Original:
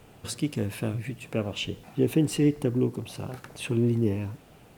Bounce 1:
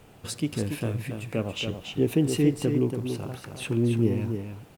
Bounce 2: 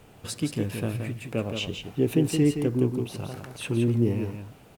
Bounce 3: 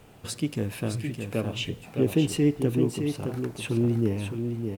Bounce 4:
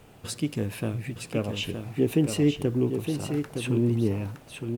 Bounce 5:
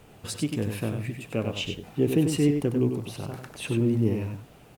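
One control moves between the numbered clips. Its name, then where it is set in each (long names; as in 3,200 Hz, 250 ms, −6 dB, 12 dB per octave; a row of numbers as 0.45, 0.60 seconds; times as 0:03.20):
single-tap delay, delay time: 282, 171, 613, 916, 96 milliseconds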